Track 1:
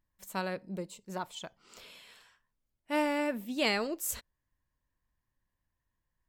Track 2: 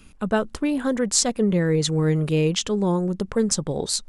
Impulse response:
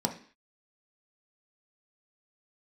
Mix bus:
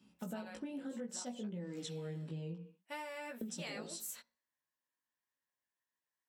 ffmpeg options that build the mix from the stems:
-filter_complex "[0:a]highpass=frequency=880:poles=1,volume=-1dB,asplit=3[link_01][link_02][link_03];[link_02]volume=-23.5dB[link_04];[1:a]equalizer=frequency=2900:width=4.8:gain=12,volume=-17dB,asplit=3[link_05][link_06][link_07];[link_05]atrim=end=2.56,asetpts=PTS-STARTPTS,afade=type=out:start_time=2.556:duration=0.004:curve=hsin[link_08];[link_06]atrim=start=2.56:end=3.41,asetpts=PTS-STARTPTS,volume=0[link_09];[link_07]atrim=start=3.41,asetpts=PTS-STARTPTS,afade=type=in:duration=0.004:curve=hsin[link_10];[link_08][link_09][link_10]concat=n=3:v=0:a=1,asplit=2[link_11][link_12];[link_12]volume=-4dB[link_13];[link_03]apad=whole_len=180006[link_14];[link_11][link_14]sidechaingate=range=-33dB:threshold=-60dB:ratio=16:detection=peak[link_15];[2:a]atrim=start_sample=2205[link_16];[link_04][link_13]amix=inputs=2:normalize=0[link_17];[link_17][link_16]afir=irnorm=-1:irlink=0[link_18];[link_01][link_15][link_18]amix=inputs=3:normalize=0,highpass=frequency=150:poles=1,flanger=delay=15.5:depth=2.8:speed=0.65,acompressor=threshold=-41dB:ratio=6"

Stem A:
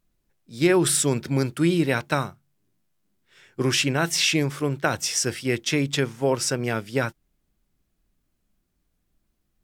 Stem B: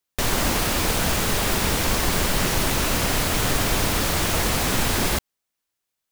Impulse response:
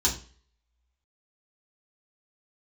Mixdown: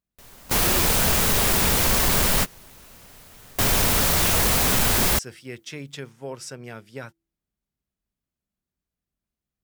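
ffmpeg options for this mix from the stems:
-filter_complex "[0:a]highpass=46,bandreject=frequency=165.5:width_type=h:width=4,bandreject=frequency=331:width_type=h:width=4,volume=-12dB,asplit=2[link_01][link_02];[1:a]highshelf=frequency=10000:gain=8.5,volume=2.5dB[link_03];[link_02]apad=whole_len=269778[link_04];[link_03][link_04]sidechaingate=range=-30dB:threshold=-59dB:ratio=16:detection=peak[link_05];[link_01][link_05]amix=inputs=2:normalize=0,equalizer=frequency=310:width=5.1:gain=-5,asoftclip=type=tanh:threshold=-13.5dB"

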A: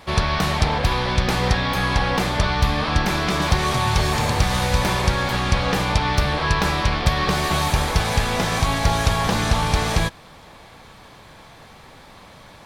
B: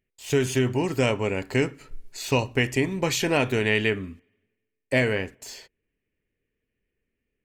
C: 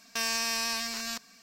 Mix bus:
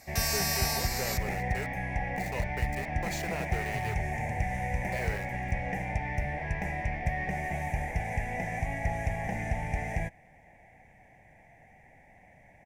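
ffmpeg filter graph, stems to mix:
ffmpeg -i stem1.wav -i stem2.wav -i stem3.wav -filter_complex "[0:a]firequalizer=gain_entry='entry(150,0);entry(420,-7);entry(750,6);entry(1200,-30);entry(1900,9);entry(4100,-29);entry(5900,-10)':delay=0.05:min_phase=1,volume=-11.5dB[link_01];[1:a]highpass=frequency=420:width=0.5412,highpass=frequency=420:width=1.3066,alimiter=limit=-15.5dB:level=0:latency=1:release=29,aeval=exprs='val(0)*gte(abs(val(0)),0.0335)':channel_layout=same,volume=-11dB[link_02];[2:a]equalizer=frequency=13000:width_type=o:width=0.97:gain=14,volume=-3.5dB[link_03];[link_01][link_02][link_03]amix=inputs=3:normalize=0,equalizer=frequency=3100:width_type=o:width=0.37:gain=-6.5" out.wav

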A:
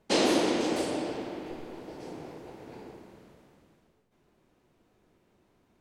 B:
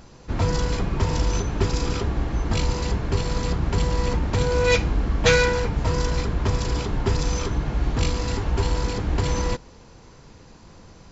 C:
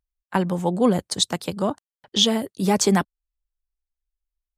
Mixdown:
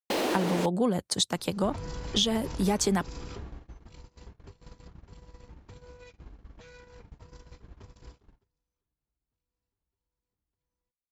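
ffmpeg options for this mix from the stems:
ffmpeg -i stem1.wav -i stem2.wav -i stem3.wav -filter_complex "[0:a]alimiter=limit=-20dB:level=0:latency=1:release=146,asplit=2[link_01][link_02];[link_02]highpass=frequency=720:poles=1,volume=11dB,asoftclip=type=tanh:threshold=-20dB[link_03];[link_01][link_03]amix=inputs=2:normalize=0,lowpass=frequency=1800:poles=1,volume=-6dB,acrusher=bits=5:mix=0:aa=0.5,volume=2.5dB,asplit=3[link_04][link_05][link_06];[link_04]atrim=end=0.66,asetpts=PTS-STARTPTS,afade=type=out:start_time=0.656:duration=0.004:curve=hsin[link_07];[link_05]atrim=start=0.66:end=2.5,asetpts=PTS-STARTPTS,volume=0[link_08];[link_06]atrim=start=2.5,asetpts=PTS-STARTPTS,afade=type=in:duration=0.004:curve=hsin[link_09];[link_07][link_08][link_09]concat=n=3:v=0:a=1[link_10];[1:a]alimiter=limit=-14dB:level=0:latency=1:release=177,acompressor=threshold=-24dB:ratio=16,adelay=1350,volume=-8.5dB,afade=type=out:start_time=2.93:duration=0.78:silence=0.473151,afade=type=out:start_time=8.08:duration=0.67:silence=0.375837[link_11];[2:a]volume=-1dB[link_12];[link_10][link_11][link_12]amix=inputs=3:normalize=0,agate=range=-37dB:threshold=-41dB:ratio=16:detection=peak,acompressor=threshold=-23dB:ratio=4" out.wav

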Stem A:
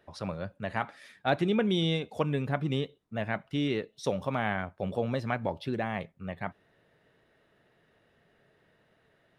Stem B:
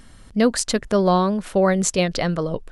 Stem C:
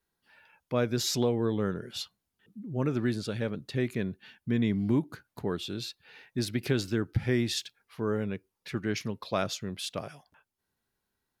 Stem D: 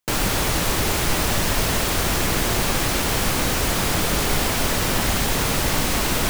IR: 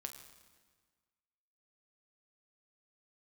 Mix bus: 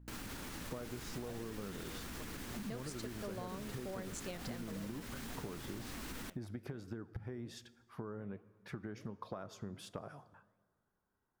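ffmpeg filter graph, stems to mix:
-filter_complex "[0:a]volume=-20dB[link_01];[1:a]highpass=150,adelay=2300,volume=-15.5dB[link_02];[2:a]acompressor=threshold=-35dB:ratio=6,highshelf=frequency=1800:width_type=q:width=1.5:gain=-10.5,bandreject=frequency=4100:width=12,volume=1.5dB,asplit=2[link_03][link_04];[link_04]volume=-6dB[link_05];[3:a]equalizer=frequency=250:width_type=o:width=0.67:gain=9,equalizer=frequency=630:width_type=o:width=0.67:gain=-5,equalizer=frequency=1600:width_type=o:width=0.67:gain=3,alimiter=limit=-14dB:level=0:latency=1:release=91,aeval=exprs='val(0)+0.02*(sin(2*PI*60*n/s)+sin(2*PI*2*60*n/s)/2+sin(2*PI*3*60*n/s)/3+sin(2*PI*4*60*n/s)/4+sin(2*PI*5*60*n/s)/5)':channel_layout=same,volume=-17.5dB,asplit=2[link_06][link_07];[link_07]volume=-12.5dB[link_08];[4:a]atrim=start_sample=2205[link_09];[link_05][link_08]amix=inputs=2:normalize=0[link_10];[link_10][link_09]afir=irnorm=-1:irlink=0[link_11];[link_01][link_02][link_03][link_06][link_11]amix=inputs=5:normalize=0,flanger=delay=2.1:depth=8.3:regen=90:speed=1.3:shape=sinusoidal,acompressor=threshold=-40dB:ratio=6"

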